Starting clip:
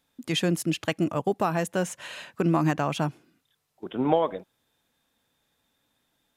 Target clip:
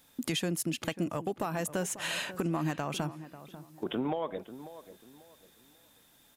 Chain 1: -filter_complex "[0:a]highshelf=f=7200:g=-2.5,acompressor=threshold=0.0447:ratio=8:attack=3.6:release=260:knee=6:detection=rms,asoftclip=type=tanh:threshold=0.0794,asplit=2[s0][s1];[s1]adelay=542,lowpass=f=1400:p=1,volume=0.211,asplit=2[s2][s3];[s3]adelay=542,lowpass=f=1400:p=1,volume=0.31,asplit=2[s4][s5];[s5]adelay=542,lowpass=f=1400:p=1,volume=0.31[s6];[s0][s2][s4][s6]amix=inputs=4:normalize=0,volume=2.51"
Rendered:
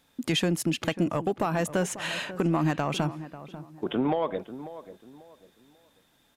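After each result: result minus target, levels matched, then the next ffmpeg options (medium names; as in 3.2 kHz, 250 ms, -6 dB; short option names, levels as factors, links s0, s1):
compression: peak gain reduction -7 dB; 8 kHz band -5.0 dB
-filter_complex "[0:a]highshelf=f=7200:g=-2.5,acompressor=threshold=0.0178:ratio=8:attack=3.6:release=260:knee=6:detection=rms,asoftclip=type=tanh:threshold=0.0794,asplit=2[s0][s1];[s1]adelay=542,lowpass=f=1400:p=1,volume=0.211,asplit=2[s2][s3];[s3]adelay=542,lowpass=f=1400:p=1,volume=0.31,asplit=2[s4][s5];[s5]adelay=542,lowpass=f=1400:p=1,volume=0.31[s6];[s0][s2][s4][s6]amix=inputs=4:normalize=0,volume=2.51"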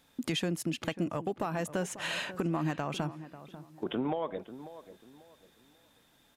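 8 kHz band -5.0 dB
-filter_complex "[0:a]highshelf=f=7200:g=9,acompressor=threshold=0.0178:ratio=8:attack=3.6:release=260:knee=6:detection=rms,asoftclip=type=tanh:threshold=0.0794,asplit=2[s0][s1];[s1]adelay=542,lowpass=f=1400:p=1,volume=0.211,asplit=2[s2][s3];[s3]adelay=542,lowpass=f=1400:p=1,volume=0.31,asplit=2[s4][s5];[s5]adelay=542,lowpass=f=1400:p=1,volume=0.31[s6];[s0][s2][s4][s6]amix=inputs=4:normalize=0,volume=2.51"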